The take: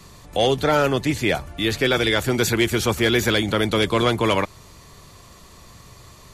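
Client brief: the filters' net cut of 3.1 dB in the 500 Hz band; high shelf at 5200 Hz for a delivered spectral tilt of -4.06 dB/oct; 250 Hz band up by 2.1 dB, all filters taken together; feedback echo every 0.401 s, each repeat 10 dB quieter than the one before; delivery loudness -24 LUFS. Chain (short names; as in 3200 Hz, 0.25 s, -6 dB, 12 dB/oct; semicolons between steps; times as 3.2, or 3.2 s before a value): bell 250 Hz +5 dB; bell 500 Hz -6 dB; high shelf 5200 Hz +5 dB; feedback echo 0.401 s, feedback 32%, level -10 dB; gain -4 dB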